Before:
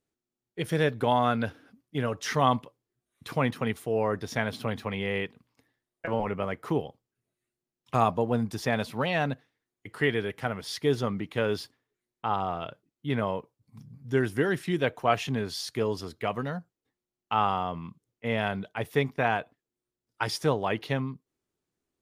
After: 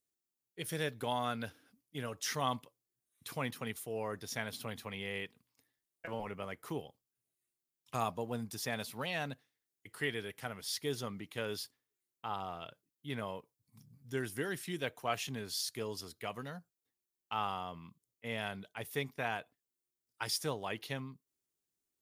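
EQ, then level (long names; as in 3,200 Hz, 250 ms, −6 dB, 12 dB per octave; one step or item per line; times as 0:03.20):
first-order pre-emphasis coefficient 0.8
+1.5 dB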